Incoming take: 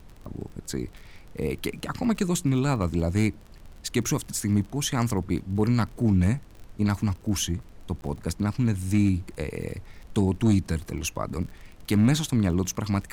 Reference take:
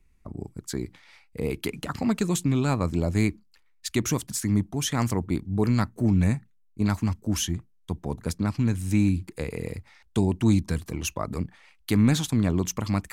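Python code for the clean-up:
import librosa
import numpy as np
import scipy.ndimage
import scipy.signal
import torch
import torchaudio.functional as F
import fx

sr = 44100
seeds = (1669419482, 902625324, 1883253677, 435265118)

y = fx.fix_declip(x, sr, threshold_db=-13.0)
y = fx.fix_declick_ar(y, sr, threshold=6.5)
y = fx.fix_interpolate(y, sr, at_s=(8.01,), length_ms=11.0)
y = fx.noise_reduce(y, sr, print_start_s=3.33, print_end_s=3.83, reduce_db=14.0)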